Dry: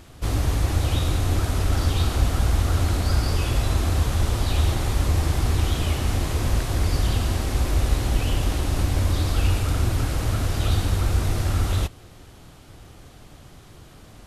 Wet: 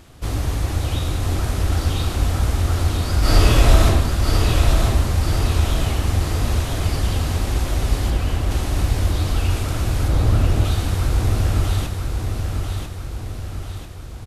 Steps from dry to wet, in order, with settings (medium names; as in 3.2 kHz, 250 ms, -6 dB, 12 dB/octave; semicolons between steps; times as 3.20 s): 3.19–3.85 s: reverb throw, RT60 1 s, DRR -9.5 dB; 8.10–8.51 s: low-pass 2.5 kHz; 10.08–10.65 s: tilt shelf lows +6.5 dB, about 1.5 kHz; feedback delay 993 ms, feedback 52%, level -5 dB